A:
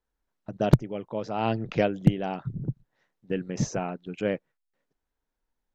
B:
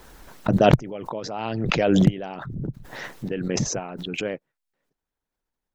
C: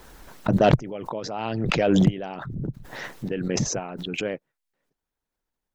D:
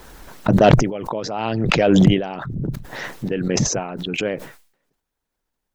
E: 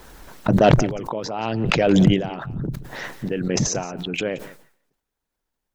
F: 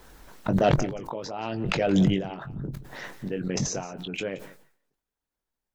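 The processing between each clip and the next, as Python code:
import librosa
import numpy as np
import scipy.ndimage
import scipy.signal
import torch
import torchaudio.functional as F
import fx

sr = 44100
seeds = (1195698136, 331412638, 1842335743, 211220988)

y1 = fx.hpss(x, sr, part='percussive', gain_db=8)
y1 = fx.pre_swell(y1, sr, db_per_s=28.0)
y1 = y1 * 10.0 ** (-7.0 / 20.0)
y2 = 10.0 ** (-7.0 / 20.0) * np.tanh(y1 / 10.0 ** (-7.0 / 20.0))
y3 = fx.sustainer(y2, sr, db_per_s=110.0)
y3 = y3 * 10.0 ** (5.0 / 20.0)
y4 = y3 + 10.0 ** (-17.5 / 20.0) * np.pad(y3, (int(175 * sr / 1000.0), 0))[:len(y3)]
y4 = y4 * 10.0 ** (-2.0 / 20.0)
y5 = fx.doubler(y4, sr, ms=21.0, db=-9.5)
y5 = y5 * 10.0 ** (-7.0 / 20.0)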